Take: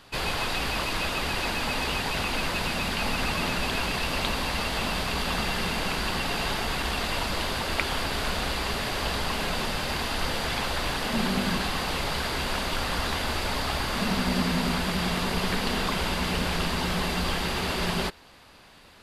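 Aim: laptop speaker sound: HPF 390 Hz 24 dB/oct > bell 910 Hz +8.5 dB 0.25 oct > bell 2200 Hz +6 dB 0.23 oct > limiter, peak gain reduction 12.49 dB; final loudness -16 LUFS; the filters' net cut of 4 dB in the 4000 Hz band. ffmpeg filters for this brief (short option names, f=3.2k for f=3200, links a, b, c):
-af "highpass=f=390:w=0.5412,highpass=f=390:w=1.3066,equalizer=f=910:t=o:w=0.25:g=8.5,equalizer=f=2.2k:t=o:w=0.23:g=6,equalizer=f=4k:t=o:g=-5.5,volume=13.5dB,alimiter=limit=-7dB:level=0:latency=1"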